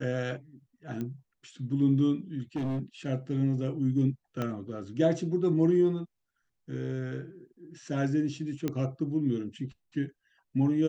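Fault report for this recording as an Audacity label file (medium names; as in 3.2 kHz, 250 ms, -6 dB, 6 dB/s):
1.010000	1.010000	pop -24 dBFS
2.560000	2.800000	clipped -28 dBFS
4.420000	4.420000	pop -19 dBFS
8.680000	8.680000	pop -17 dBFS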